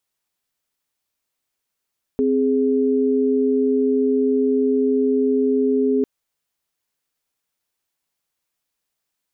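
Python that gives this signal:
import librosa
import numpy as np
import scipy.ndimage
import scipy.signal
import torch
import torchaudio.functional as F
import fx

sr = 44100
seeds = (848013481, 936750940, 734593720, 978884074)

y = fx.chord(sr, length_s=3.85, notes=(60, 68), wave='sine', level_db=-18.0)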